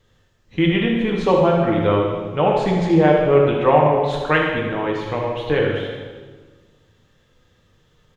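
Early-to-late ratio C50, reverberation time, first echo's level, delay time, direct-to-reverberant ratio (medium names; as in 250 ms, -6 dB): 1.5 dB, 1.4 s, -8.0 dB, 78 ms, -1.5 dB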